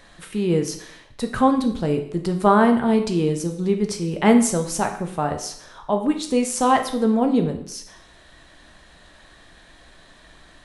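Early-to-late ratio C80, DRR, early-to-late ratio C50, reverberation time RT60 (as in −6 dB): 12.5 dB, 5.0 dB, 9.5 dB, 0.65 s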